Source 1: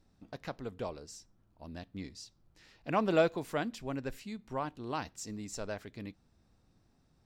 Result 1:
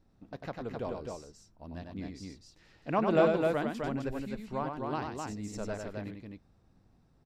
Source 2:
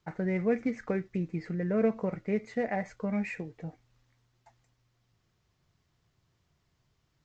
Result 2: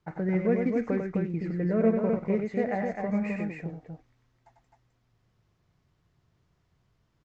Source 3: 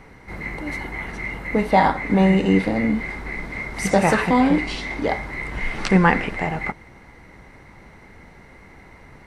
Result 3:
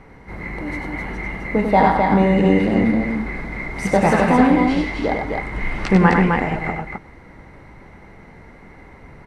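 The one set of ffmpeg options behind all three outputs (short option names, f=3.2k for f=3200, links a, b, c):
-filter_complex "[0:a]highshelf=f=2.4k:g=-8.5,asplit=2[a][b];[b]aecho=0:1:96.21|259.5:0.562|0.631[c];[a][c]amix=inputs=2:normalize=0,aresample=32000,aresample=44100,volume=1.5dB"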